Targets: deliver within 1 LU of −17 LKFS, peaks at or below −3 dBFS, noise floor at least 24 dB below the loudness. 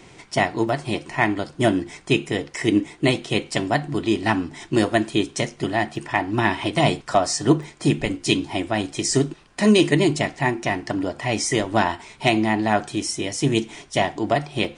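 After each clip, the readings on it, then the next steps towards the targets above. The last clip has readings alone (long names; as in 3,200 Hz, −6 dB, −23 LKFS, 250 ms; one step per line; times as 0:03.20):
number of dropouts 4; longest dropout 1.9 ms; integrated loudness −22.5 LKFS; sample peak −4.5 dBFS; target loudness −17.0 LKFS
→ repair the gap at 0:00.69/0:05.96/0:07.63/0:14.65, 1.9 ms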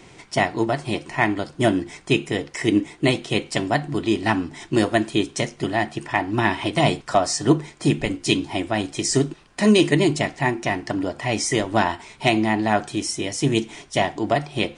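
number of dropouts 0; integrated loudness −22.5 LKFS; sample peak −4.5 dBFS; target loudness −17.0 LKFS
→ level +5.5 dB
brickwall limiter −3 dBFS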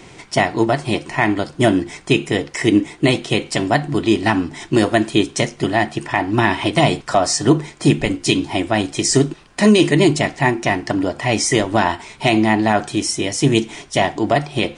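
integrated loudness −17.5 LKFS; sample peak −3.0 dBFS; background noise floor −44 dBFS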